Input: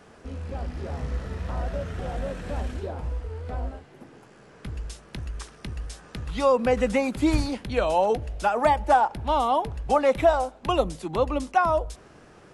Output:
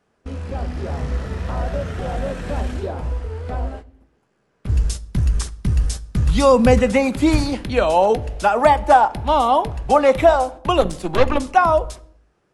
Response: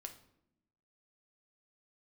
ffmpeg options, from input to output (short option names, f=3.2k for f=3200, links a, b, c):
-filter_complex "[0:a]agate=range=-22dB:threshold=-39dB:ratio=16:detection=peak,asettb=1/sr,asplit=3[a][b][c];[a]atrim=end=4.694[d];[b]atrim=start=4.69:end=6.79,asetpts=PTS-STARTPTS,afade=t=in:d=0.004:c=qsin,afade=t=out:st=2.096:d=0.004:c=qsin,bass=f=250:g=11,treble=f=4k:g=8[e];[c]atrim=start=6.786[f];[d][e]acrossfade=d=0.004:c1=hsin:c2=qsin[g];[g][f]acrossfade=d=0.004:c1=qsin:c2=hsin,asplit=3[h][i][j];[h]afade=t=out:st=10.8:d=0.02[k];[i]aeval=exprs='0.316*(cos(1*acos(clip(val(0)/0.316,-1,1)))-cos(1*PI/2))+0.0631*(cos(6*acos(clip(val(0)/0.316,-1,1)))-cos(6*PI/2))':c=same,afade=t=in:st=10.8:d=0.02,afade=t=out:st=11.37:d=0.02[l];[j]afade=t=in:st=11.37:d=0.02[m];[k][l][m]amix=inputs=3:normalize=0,asplit=2[n][o];[1:a]atrim=start_sample=2205,afade=t=out:st=0.44:d=0.01,atrim=end_sample=19845[p];[o][p]afir=irnorm=-1:irlink=0,volume=-1.5dB[q];[n][q]amix=inputs=2:normalize=0,volume=3.5dB"